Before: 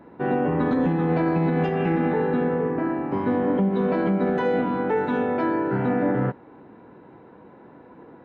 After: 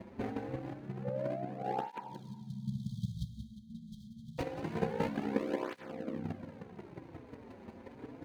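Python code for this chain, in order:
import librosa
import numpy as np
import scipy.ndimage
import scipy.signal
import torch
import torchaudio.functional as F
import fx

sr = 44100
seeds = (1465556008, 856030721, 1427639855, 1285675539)

y = scipy.signal.medfilt(x, 41)
y = fx.peak_eq(y, sr, hz=390.0, db=-4.0, octaves=0.59)
y = fx.over_compress(y, sr, threshold_db=-30.0, ratio=-0.5)
y = fx.chopper(y, sr, hz=5.6, depth_pct=60, duty_pct=10)
y = fx.spec_paint(y, sr, seeds[0], shape='rise', start_s=1.04, length_s=1.18, low_hz=520.0, high_hz=1100.0, level_db=-40.0)
y = y * np.sin(2.0 * np.pi * 32.0 * np.arange(len(y)) / sr)
y = fx.brickwall_bandstop(y, sr, low_hz=220.0, high_hz=3100.0, at=(2.0, 4.39))
y = y + 10.0 ** (-11.0 / 20.0) * np.pad(y, (int(183 * sr / 1000.0), 0))[:len(y)]
y = fx.rev_schroeder(y, sr, rt60_s=1.4, comb_ms=31, drr_db=12.0)
y = fx.flanger_cancel(y, sr, hz=0.26, depth_ms=7.0)
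y = F.gain(torch.from_numpy(y), 5.5).numpy()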